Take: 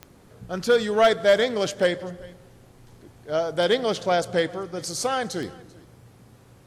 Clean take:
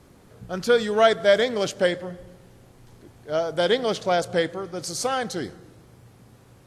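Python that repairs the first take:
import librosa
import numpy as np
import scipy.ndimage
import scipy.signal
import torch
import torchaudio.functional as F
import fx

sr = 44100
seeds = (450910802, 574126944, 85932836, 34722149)

y = fx.fix_declip(x, sr, threshold_db=-10.5)
y = fx.fix_declick_ar(y, sr, threshold=10.0)
y = fx.fix_echo_inverse(y, sr, delay_ms=390, level_db=-23.5)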